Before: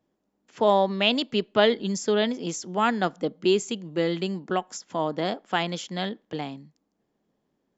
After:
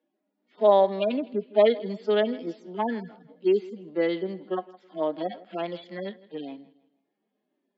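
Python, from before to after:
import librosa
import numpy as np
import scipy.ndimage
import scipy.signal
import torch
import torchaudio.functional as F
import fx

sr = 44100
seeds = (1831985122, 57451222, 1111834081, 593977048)

y = fx.hpss_only(x, sr, part='harmonic')
y = fx.cabinet(y, sr, low_hz=230.0, low_slope=24, high_hz=4300.0, hz=(600.0, 1100.0, 2200.0), db=(4, -3, 4))
y = fx.echo_feedback(y, sr, ms=161, feedback_pct=34, wet_db=-20.0)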